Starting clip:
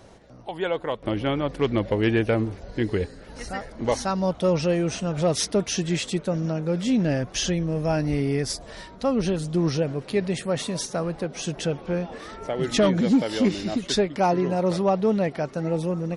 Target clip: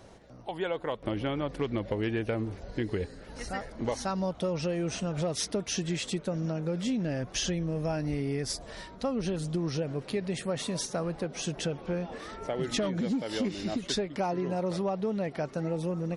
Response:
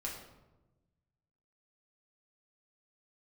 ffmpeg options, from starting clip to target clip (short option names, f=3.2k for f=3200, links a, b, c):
-af "acompressor=threshold=-24dB:ratio=6,volume=-3dB"